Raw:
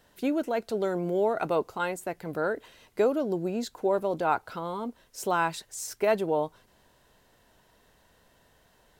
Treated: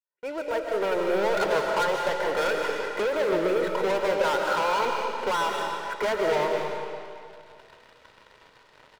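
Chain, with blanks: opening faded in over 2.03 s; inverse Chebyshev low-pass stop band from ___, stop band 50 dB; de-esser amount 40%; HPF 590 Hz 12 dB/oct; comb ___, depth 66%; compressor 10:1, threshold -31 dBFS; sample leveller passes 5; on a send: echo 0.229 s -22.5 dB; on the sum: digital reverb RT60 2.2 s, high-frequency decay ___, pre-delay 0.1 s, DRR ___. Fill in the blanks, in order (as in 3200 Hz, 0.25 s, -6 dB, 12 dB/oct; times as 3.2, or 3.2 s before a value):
5500 Hz, 2.1 ms, 0.9×, 1 dB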